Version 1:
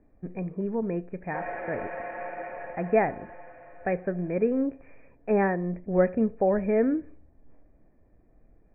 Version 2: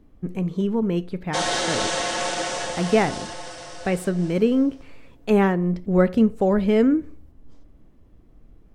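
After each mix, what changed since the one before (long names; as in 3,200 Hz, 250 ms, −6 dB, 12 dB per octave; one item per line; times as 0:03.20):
background +6.5 dB
master: remove Chebyshev low-pass with heavy ripple 2,500 Hz, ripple 9 dB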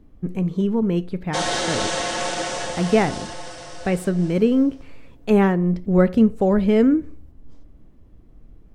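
master: add low-shelf EQ 270 Hz +4 dB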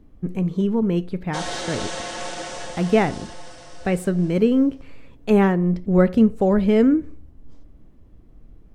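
background −6.0 dB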